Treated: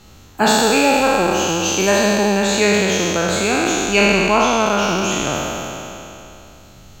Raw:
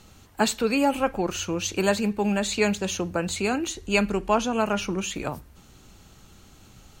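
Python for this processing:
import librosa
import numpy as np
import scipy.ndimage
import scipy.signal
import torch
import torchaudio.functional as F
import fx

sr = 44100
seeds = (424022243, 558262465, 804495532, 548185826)

y = fx.spec_trails(x, sr, decay_s=2.99)
y = fx.peak_eq(y, sr, hz=9300.0, db=-11.0, octaves=0.23)
y = F.gain(torch.from_numpy(y), 3.5).numpy()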